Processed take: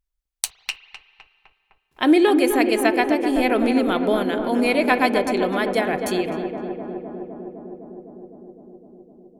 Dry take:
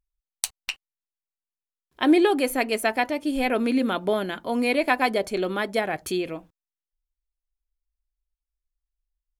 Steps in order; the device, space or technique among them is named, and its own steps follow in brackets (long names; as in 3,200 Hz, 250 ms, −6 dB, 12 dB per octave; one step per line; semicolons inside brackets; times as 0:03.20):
dub delay into a spring reverb (feedback echo with a low-pass in the loop 255 ms, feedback 83%, low-pass 1,500 Hz, level −7 dB; spring reverb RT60 2.1 s, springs 36/55 ms, chirp 45 ms, DRR 15.5 dB)
level +2.5 dB